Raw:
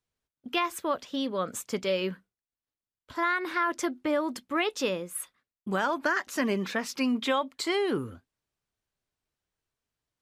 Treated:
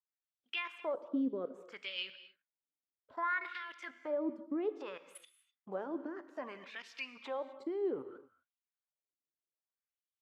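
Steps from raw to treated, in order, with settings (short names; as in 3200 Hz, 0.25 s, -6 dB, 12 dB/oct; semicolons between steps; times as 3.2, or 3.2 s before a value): level quantiser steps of 17 dB; wah 0.62 Hz 270–3200 Hz, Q 2.7; non-linear reverb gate 0.28 s flat, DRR 12 dB; gain +3.5 dB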